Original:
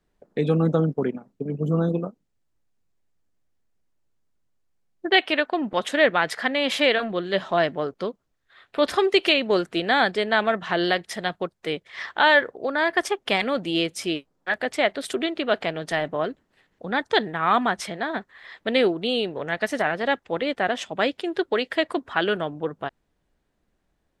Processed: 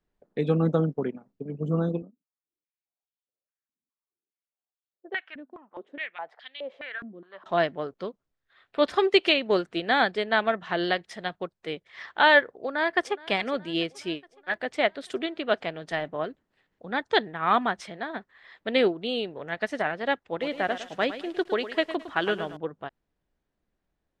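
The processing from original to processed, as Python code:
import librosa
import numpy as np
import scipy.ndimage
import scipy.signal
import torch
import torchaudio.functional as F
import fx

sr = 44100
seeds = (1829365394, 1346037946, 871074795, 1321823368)

y = fx.filter_held_bandpass(x, sr, hz=4.8, low_hz=250.0, high_hz=3400.0, at=(2.02, 7.46))
y = fx.echo_throw(y, sr, start_s=12.55, length_s=0.62, ms=420, feedback_pct=65, wet_db=-17.5)
y = fx.echo_crushed(y, sr, ms=108, feedback_pct=35, bits=7, wet_db=-8, at=(20.28, 22.57))
y = scipy.signal.sosfilt(scipy.signal.bessel(2, 6100.0, 'lowpass', norm='mag', fs=sr, output='sos'), y)
y = fx.upward_expand(y, sr, threshold_db=-29.0, expansion=1.5)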